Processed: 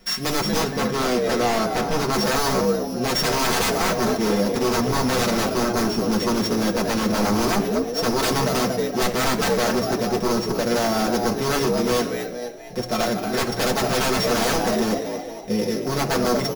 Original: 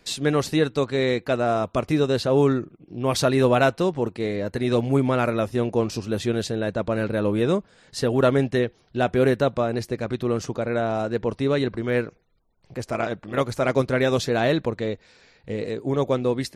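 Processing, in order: sample sorter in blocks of 8 samples; comb 5.5 ms, depth 66%; frequency-shifting echo 0.233 s, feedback 46%, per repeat +60 Hz, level -9 dB; wavefolder -20 dBFS; 0.61–2.13 high shelf 4800 Hz -6.5 dB; reverb RT60 0.85 s, pre-delay 4 ms, DRR 1.5 dB; gain +1.5 dB

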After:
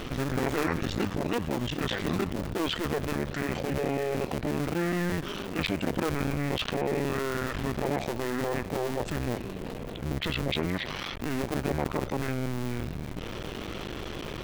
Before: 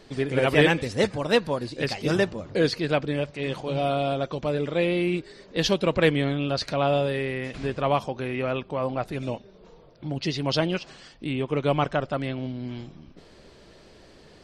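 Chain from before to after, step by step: cycle switcher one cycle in 2, muted; formant shift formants -6 st; fast leveller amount 70%; gain -7 dB

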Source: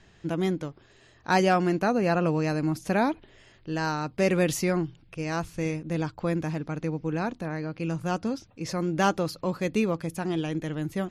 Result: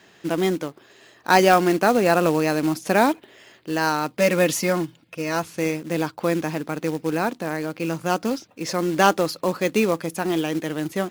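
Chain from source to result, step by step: HPF 250 Hz 12 dB/oct; short-mantissa float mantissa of 2-bit; 4.19–5.43 notch comb 390 Hz; gain +7.5 dB

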